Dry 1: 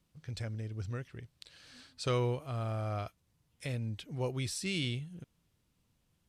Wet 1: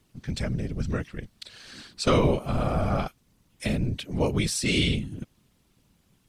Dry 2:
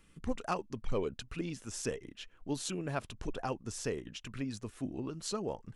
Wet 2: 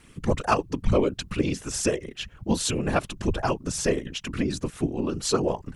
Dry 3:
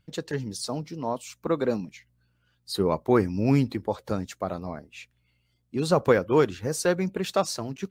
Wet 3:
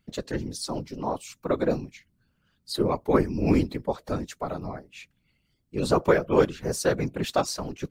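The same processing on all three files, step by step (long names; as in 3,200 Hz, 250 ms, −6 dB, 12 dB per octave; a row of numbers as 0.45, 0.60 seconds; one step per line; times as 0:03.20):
random phases in short frames
loudness normalisation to −27 LKFS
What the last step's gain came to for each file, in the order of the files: +10.5, +12.0, −0.5 decibels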